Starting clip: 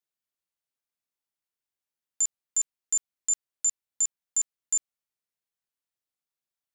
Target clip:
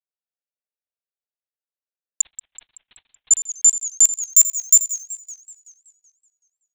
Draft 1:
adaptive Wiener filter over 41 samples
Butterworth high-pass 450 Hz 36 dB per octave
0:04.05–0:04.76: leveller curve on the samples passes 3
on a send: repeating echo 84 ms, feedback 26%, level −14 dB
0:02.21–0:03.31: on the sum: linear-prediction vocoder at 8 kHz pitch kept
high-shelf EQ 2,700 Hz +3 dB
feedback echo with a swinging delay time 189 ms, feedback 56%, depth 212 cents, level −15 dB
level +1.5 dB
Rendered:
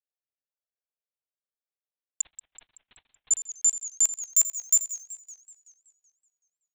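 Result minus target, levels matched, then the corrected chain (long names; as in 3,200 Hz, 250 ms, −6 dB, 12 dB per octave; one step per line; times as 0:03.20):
2,000 Hz band +5.0 dB
adaptive Wiener filter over 41 samples
Butterworth high-pass 450 Hz 36 dB per octave
0:04.05–0:04.76: leveller curve on the samples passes 3
on a send: repeating echo 84 ms, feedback 26%, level −14 dB
0:02.21–0:03.31: on the sum: linear-prediction vocoder at 8 kHz pitch kept
high-shelf EQ 2,700 Hz +13 dB
feedback echo with a swinging delay time 189 ms, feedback 56%, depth 212 cents, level −15 dB
level +1.5 dB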